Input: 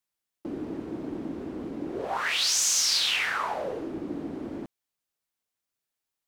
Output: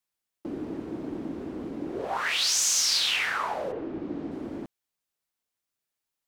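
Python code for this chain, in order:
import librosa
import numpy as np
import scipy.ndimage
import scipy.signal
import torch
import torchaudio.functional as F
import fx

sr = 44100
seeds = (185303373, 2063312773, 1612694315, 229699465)

y = fx.lowpass(x, sr, hz=fx.line((3.71, 2500.0), (4.3, 6500.0)), slope=12, at=(3.71, 4.3), fade=0.02)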